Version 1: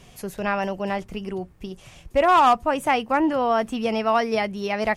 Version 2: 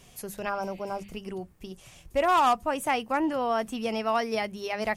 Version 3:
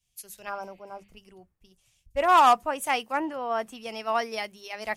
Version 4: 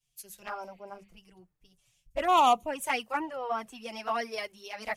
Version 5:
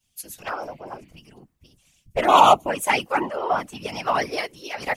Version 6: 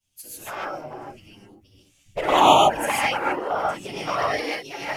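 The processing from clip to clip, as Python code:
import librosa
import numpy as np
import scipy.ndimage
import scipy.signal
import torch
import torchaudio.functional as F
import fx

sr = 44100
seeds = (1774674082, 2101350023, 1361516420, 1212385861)

y1 = fx.spec_repair(x, sr, seeds[0], start_s=0.52, length_s=0.57, low_hz=1600.0, high_hz=4800.0, source='after')
y1 = fx.high_shelf(y1, sr, hz=6500.0, db=10.0)
y1 = fx.hum_notches(y1, sr, base_hz=50, count=4)
y1 = F.gain(torch.from_numpy(y1), -6.0).numpy()
y2 = fx.low_shelf(y1, sr, hz=250.0, db=-11.5)
y2 = fx.band_widen(y2, sr, depth_pct=100)
y3 = fx.env_flanger(y2, sr, rest_ms=7.2, full_db=-19.5)
y4 = fx.whisperise(y3, sr, seeds[1])
y4 = F.gain(torch.from_numpy(y4), 8.5).numpy()
y5 = fx.quant_float(y4, sr, bits=6)
y5 = fx.env_flanger(y5, sr, rest_ms=10.8, full_db=-12.0)
y5 = fx.rev_gated(y5, sr, seeds[2], gate_ms=170, shape='rising', drr_db=-5.0)
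y5 = F.gain(torch.from_numpy(y5), -2.5).numpy()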